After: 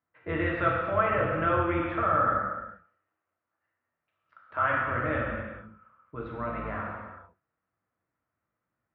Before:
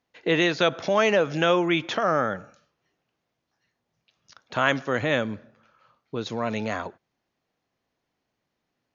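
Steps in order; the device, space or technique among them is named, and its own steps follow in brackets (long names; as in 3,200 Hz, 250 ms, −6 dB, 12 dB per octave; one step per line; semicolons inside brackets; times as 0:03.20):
0:02.36–0:04.77: high-pass filter 300 Hz 12 dB per octave
sub-octave bass pedal (sub-octave generator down 2 octaves, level −3 dB; loudspeaker in its box 81–2,000 Hz, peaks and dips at 91 Hz +9 dB, 150 Hz −5 dB, 260 Hz −5 dB, 410 Hz −8 dB, 780 Hz −5 dB, 1,300 Hz +8 dB)
reverb whose tail is shaped and stops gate 470 ms falling, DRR −3.5 dB
level −8.5 dB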